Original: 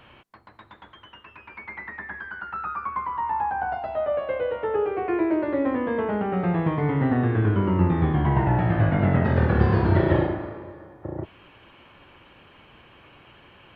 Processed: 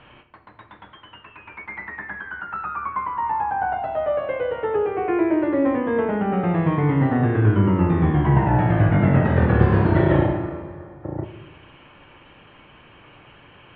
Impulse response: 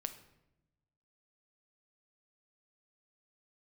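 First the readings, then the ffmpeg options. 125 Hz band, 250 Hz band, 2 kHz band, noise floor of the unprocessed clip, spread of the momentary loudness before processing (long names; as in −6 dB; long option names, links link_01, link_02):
+3.5 dB, +3.5 dB, +3.0 dB, −53 dBFS, 16 LU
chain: -filter_complex "[0:a]lowpass=frequency=3500:width=0.5412,lowpass=frequency=3500:width=1.3066[link_01];[1:a]atrim=start_sample=2205[link_02];[link_01][link_02]afir=irnorm=-1:irlink=0,volume=4.5dB"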